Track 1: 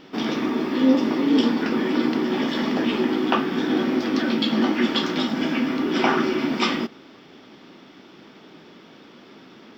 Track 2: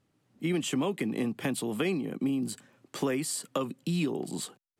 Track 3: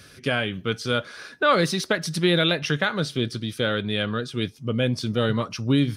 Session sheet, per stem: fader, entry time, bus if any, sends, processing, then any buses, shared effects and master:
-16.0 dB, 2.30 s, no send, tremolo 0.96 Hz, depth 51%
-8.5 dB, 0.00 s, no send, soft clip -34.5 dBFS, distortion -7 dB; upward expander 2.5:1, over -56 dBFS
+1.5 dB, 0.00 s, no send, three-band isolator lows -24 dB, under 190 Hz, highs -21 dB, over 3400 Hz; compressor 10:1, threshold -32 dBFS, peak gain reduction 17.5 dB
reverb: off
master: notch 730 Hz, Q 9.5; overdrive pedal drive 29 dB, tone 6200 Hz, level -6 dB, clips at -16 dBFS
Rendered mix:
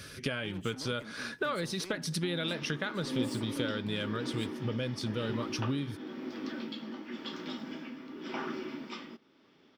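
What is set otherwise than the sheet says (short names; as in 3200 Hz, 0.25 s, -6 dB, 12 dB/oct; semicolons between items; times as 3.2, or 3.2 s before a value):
stem 3: missing three-band isolator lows -24 dB, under 190 Hz, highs -21 dB, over 3400 Hz; master: missing overdrive pedal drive 29 dB, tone 6200 Hz, level -6 dB, clips at -16 dBFS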